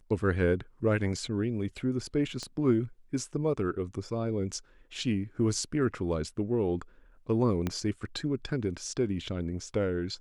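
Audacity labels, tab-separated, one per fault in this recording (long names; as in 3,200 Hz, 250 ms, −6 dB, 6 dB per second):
2.430000	2.430000	click −25 dBFS
7.670000	7.670000	click −17 dBFS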